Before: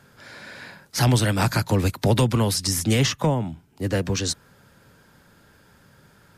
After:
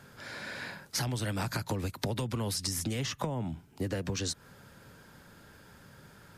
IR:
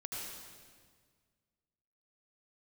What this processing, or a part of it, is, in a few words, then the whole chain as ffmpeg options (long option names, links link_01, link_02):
serial compression, leveller first: -af "acompressor=threshold=-24dB:ratio=2.5,acompressor=threshold=-30dB:ratio=6"